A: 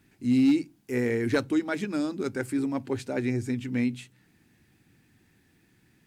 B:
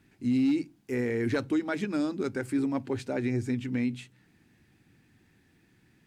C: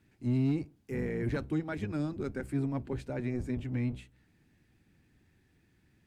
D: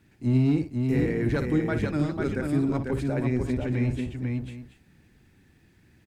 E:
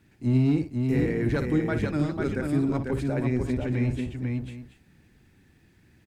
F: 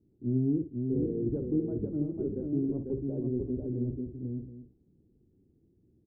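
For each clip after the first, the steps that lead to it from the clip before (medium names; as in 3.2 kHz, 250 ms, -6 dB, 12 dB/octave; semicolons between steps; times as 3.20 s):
treble shelf 7.8 kHz -7.5 dB; peak limiter -20 dBFS, peak gain reduction 5 dB
octave divider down 1 oct, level 0 dB; dynamic bell 5.6 kHz, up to -5 dB, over -57 dBFS, Q 0.84; trim -6 dB
multi-tap echo 55/495/727 ms -10/-4/-15 dB; trim +6.5 dB
no audible change
four-pole ladder low-pass 470 Hz, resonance 45%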